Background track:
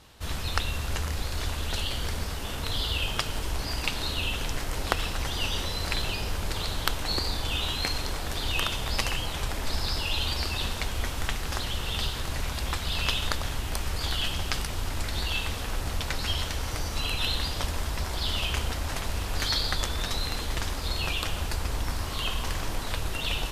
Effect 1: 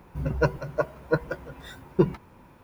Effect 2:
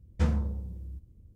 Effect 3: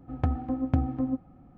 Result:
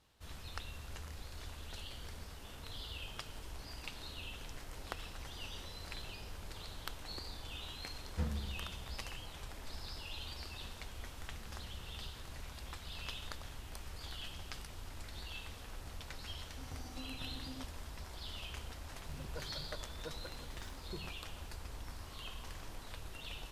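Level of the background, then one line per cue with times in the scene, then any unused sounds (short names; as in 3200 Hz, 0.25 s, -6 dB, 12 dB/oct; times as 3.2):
background track -17 dB
7.98 add 2 -11 dB
11.13 add 2 -11 dB + compressor, threshold -40 dBFS
16.48 add 3 -17.5 dB + compressor, threshold -27 dBFS
18.94 add 1 -13.5 dB + compressor 3:1, threshold -32 dBFS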